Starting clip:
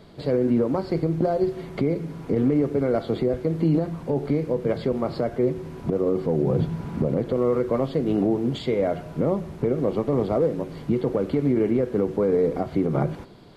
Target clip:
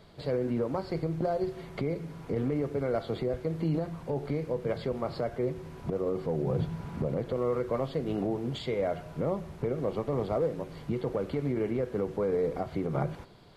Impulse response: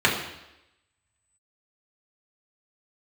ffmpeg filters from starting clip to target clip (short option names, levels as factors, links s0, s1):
-af "equalizer=f=270:t=o:w=1.4:g=-7,volume=0.631"